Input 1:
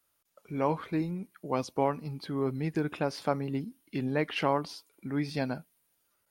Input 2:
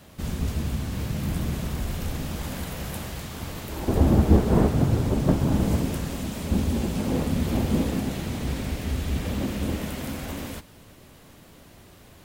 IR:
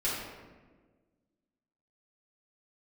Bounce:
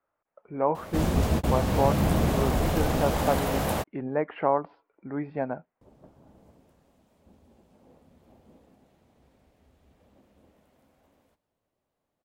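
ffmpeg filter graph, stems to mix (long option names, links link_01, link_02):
-filter_complex "[0:a]lowpass=frequency=2100:width=0.5412,lowpass=frequency=2100:width=1.3066,volume=-5dB,asplit=2[link_01][link_02];[1:a]adelay=750,volume=2dB,asplit=3[link_03][link_04][link_05];[link_03]atrim=end=3.84,asetpts=PTS-STARTPTS,afade=type=out:start_time=3.836:duration=0.004:curve=hsin[link_06];[link_04]atrim=start=3.84:end=5.81,asetpts=PTS-STARTPTS,volume=0[link_07];[link_05]atrim=start=5.81,asetpts=PTS-STARTPTS,afade=type=in:duration=0.004:curve=hsin[link_08];[link_06][link_07][link_08]concat=n=3:v=0:a=1[link_09];[link_02]apad=whole_len=572922[link_10];[link_09][link_10]sidechaingate=range=-39dB:threshold=-59dB:ratio=16:detection=peak[link_11];[link_01][link_11]amix=inputs=2:normalize=0,equalizer=frequency=680:width=0.7:gain=11"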